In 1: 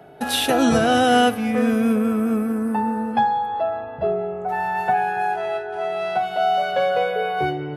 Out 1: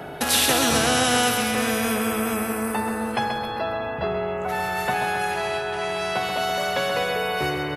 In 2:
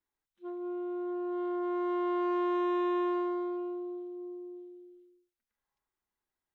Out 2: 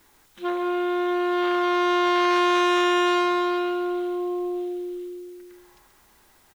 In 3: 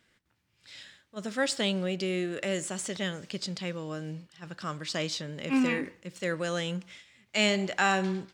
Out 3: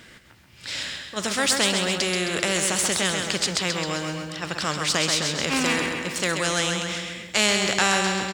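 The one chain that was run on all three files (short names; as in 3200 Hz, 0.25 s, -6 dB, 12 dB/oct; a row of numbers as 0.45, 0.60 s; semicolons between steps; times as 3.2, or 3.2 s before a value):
feedback echo 0.132 s, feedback 44%, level -8 dB; spectral compressor 2:1; match loudness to -23 LUFS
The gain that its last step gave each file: -2.0, +11.5, +7.0 dB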